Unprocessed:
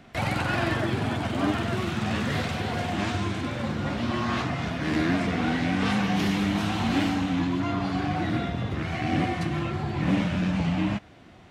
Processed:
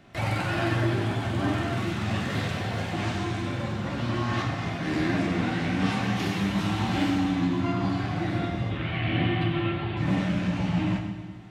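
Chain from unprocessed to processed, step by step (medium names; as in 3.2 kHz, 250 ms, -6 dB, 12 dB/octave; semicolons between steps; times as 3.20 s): 8.70–9.97 s: resonant high shelf 4.5 kHz -12.5 dB, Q 3; on a send: reverberation RT60 1.4 s, pre-delay 4 ms, DRR 1 dB; on the sum: trim -4 dB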